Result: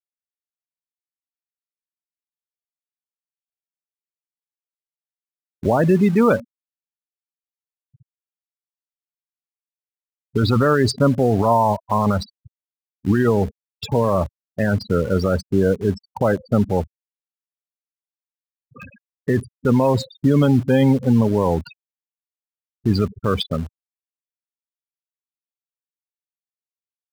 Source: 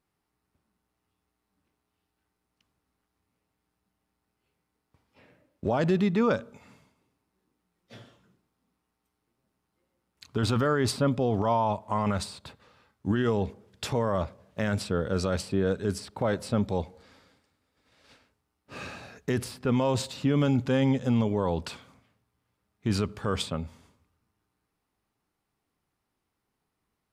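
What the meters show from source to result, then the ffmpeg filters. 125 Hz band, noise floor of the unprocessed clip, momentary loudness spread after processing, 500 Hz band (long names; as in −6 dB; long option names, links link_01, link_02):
+9.0 dB, −81 dBFS, 10 LU, +9.0 dB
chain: -filter_complex "[0:a]afftfilt=real='re*gte(hypot(re,im),0.0447)':imag='im*gte(hypot(re,im),0.0447)':win_size=1024:overlap=0.75,asplit=2[link_01][link_02];[link_02]acrusher=bits=5:mix=0:aa=0.000001,volume=-12dB[link_03];[link_01][link_03]amix=inputs=2:normalize=0,volume=7dB"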